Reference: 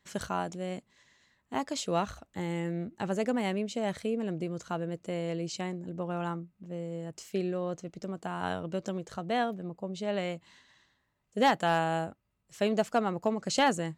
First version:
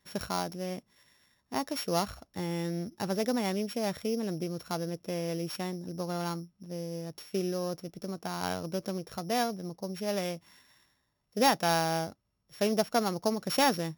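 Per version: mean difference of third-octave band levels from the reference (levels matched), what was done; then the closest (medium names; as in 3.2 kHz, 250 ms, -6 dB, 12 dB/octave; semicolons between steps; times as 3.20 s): 5.5 dB: sorted samples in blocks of 8 samples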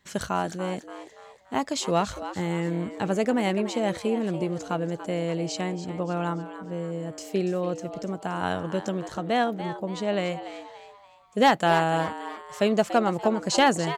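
3.0 dB: frequency-shifting echo 287 ms, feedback 41%, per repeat +130 Hz, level -12 dB; trim +5.5 dB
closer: second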